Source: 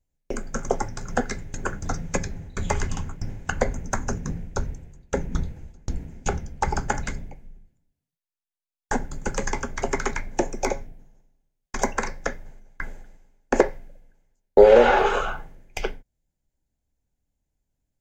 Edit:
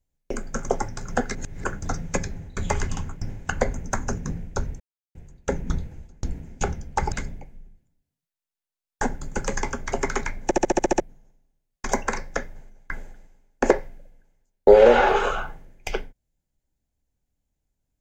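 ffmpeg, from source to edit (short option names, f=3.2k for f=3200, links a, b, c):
-filter_complex "[0:a]asplit=13[a][b][c][d][e][f][g][h][i][j][k][l][m];[a]atrim=end=1.352[n];[b]atrim=start=1.348:end=1.642,asetpts=PTS-STARTPTS,areverse[o];[c]atrim=start=1.638:end=4.8,asetpts=PTS-STARTPTS,afade=t=out:st=3.158:d=0.004:c=hsin,apad=pad_dur=0.35[p];[d]atrim=start=4.8:end=6.772,asetpts=PTS-STARTPTS,afade=t=in:d=0.004:c=hsin[q];[e]atrim=start=7.018:end=10.412[r];[f]atrim=start=10.338:end=10.412[s];[g]atrim=start=10.338:end=10.412[t];[h]atrim=start=10.338:end=10.412[u];[i]atrim=start=10.338:end=10.412[v];[j]atrim=start=10.338:end=10.412[w];[k]atrim=start=10.338:end=10.412[x];[l]atrim=start=10.338:end=10.412[y];[m]atrim=start=10.898[z];[n][o]acrossfade=d=0.004:c1=hsin:c2=hsin[aa];[p][q]concat=n=2:v=0:a=1[ab];[aa][ab]acrossfade=d=0.004:c1=hsin:c2=hsin[ac];[ac][r]acrossfade=d=0.004:c1=hsin:c2=hsin[ad];[ad][s]acrossfade=d=0.004:c1=hsin:c2=hsin[ae];[ae][t]acrossfade=d=0.004:c1=hsin:c2=hsin[af];[af][u]acrossfade=d=0.004:c1=hsin:c2=hsin[ag];[ag][v]acrossfade=d=0.004:c1=hsin:c2=hsin[ah];[ah][w]acrossfade=d=0.004:c1=hsin:c2=hsin[ai];[ai][x]acrossfade=d=0.004:c1=hsin:c2=hsin[aj];[aj][y]acrossfade=d=0.004:c1=hsin:c2=hsin[ak];[ak][z]acrossfade=d=0.004:c1=hsin:c2=hsin"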